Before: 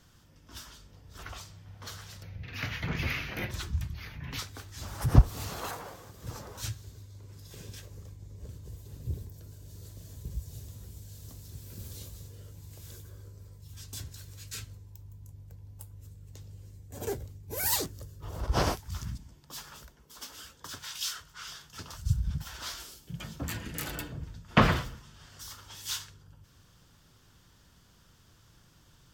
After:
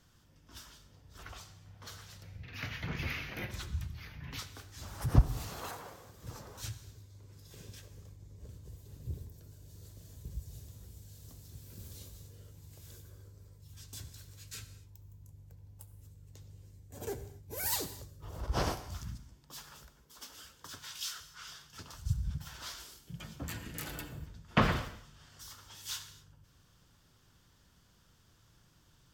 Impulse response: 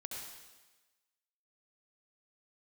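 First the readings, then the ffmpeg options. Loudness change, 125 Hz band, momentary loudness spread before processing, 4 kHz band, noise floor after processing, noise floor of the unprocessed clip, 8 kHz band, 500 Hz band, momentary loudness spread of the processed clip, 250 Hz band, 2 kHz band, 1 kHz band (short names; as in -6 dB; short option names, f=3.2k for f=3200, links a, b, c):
-5.0 dB, -5.0 dB, 20 LU, -5.0 dB, -65 dBFS, -61 dBFS, -5.0 dB, -5.0 dB, 20 LU, -5.0 dB, -5.0 dB, -5.0 dB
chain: -filter_complex "[0:a]asplit=2[a][b];[1:a]atrim=start_sample=2205,afade=t=out:st=0.32:d=0.01,atrim=end_sample=14553[c];[b][c]afir=irnorm=-1:irlink=0,volume=-7dB[d];[a][d]amix=inputs=2:normalize=0,volume=-7dB"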